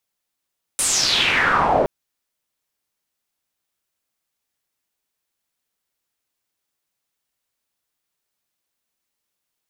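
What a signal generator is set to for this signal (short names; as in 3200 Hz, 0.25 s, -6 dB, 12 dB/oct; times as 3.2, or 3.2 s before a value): swept filtered noise white, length 1.07 s lowpass, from 9900 Hz, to 550 Hz, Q 4.6, exponential, gain ramp +15 dB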